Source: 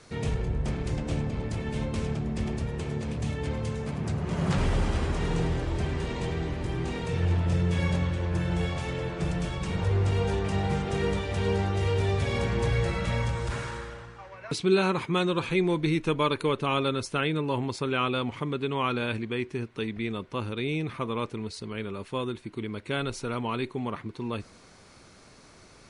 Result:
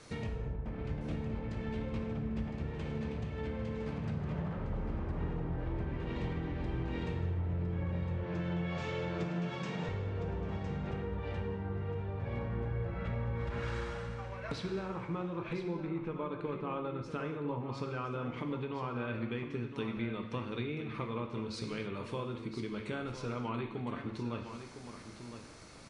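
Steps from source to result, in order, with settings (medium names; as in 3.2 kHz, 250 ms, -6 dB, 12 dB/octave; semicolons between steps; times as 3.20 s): 8.23–9.89 s: Chebyshev band-pass 160–7200 Hz, order 3; low-pass that closes with the level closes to 1.4 kHz, closed at -23.5 dBFS; compression, threshold -34 dBFS, peak gain reduction 15.5 dB; delay 1010 ms -10 dB; gated-style reverb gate 310 ms falling, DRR 4 dB; trim -2 dB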